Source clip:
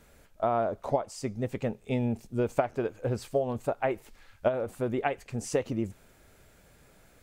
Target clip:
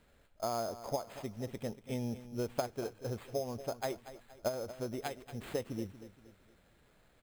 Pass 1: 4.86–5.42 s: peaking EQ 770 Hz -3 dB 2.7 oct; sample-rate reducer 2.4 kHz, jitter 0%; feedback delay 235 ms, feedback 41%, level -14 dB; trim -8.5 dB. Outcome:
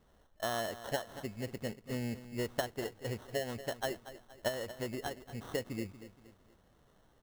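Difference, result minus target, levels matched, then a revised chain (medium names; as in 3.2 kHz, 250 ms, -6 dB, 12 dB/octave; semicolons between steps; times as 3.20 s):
sample-rate reducer: distortion +8 dB
4.86–5.42 s: peaking EQ 770 Hz -3 dB 2.7 oct; sample-rate reducer 5.7 kHz, jitter 0%; feedback delay 235 ms, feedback 41%, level -14 dB; trim -8.5 dB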